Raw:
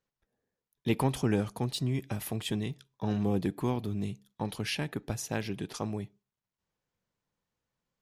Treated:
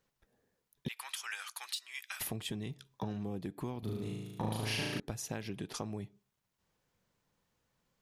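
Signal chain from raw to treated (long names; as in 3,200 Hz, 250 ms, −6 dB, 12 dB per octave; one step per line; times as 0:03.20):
0:00.88–0:02.21: high-pass filter 1,400 Hz 24 dB per octave
downward compressor 12 to 1, threshold −43 dBFS, peak gain reduction 19 dB
0:03.79–0:05.00: flutter between parallel walls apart 6.3 metres, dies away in 1.3 s
level +7 dB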